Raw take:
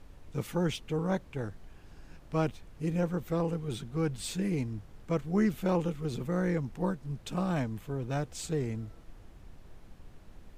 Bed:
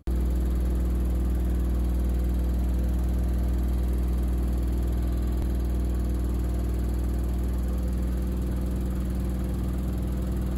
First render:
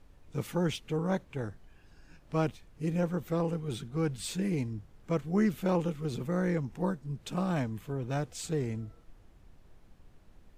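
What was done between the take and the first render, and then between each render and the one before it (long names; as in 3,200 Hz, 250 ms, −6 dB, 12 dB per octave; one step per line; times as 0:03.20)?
noise reduction from a noise print 6 dB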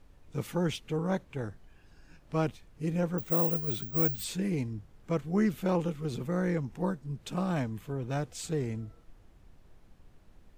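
0:03.18–0:04.24: bad sample-rate conversion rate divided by 2×, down filtered, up zero stuff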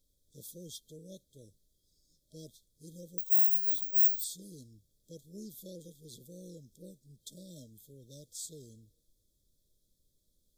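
brick-wall band-stop 630–3,200 Hz
first-order pre-emphasis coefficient 0.9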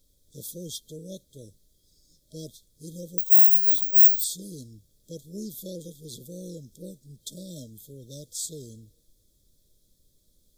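level +9.5 dB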